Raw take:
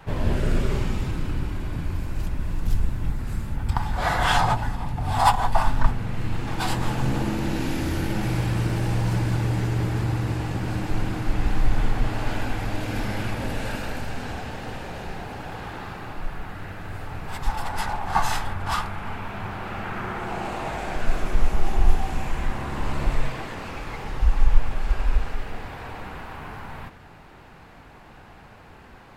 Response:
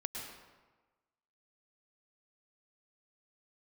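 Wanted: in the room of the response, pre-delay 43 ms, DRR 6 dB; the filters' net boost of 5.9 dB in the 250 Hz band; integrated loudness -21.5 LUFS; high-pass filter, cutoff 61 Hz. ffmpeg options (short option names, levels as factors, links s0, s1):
-filter_complex "[0:a]highpass=61,equalizer=f=250:t=o:g=8,asplit=2[s0][s1];[1:a]atrim=start_sample=2205,adelay=43[s2];[s1][s2]afir=irnorm=-1:irlink=0,volume=0.473[s3];[s0][s3]amix=inputs=2:normalize=0,volume=1.5"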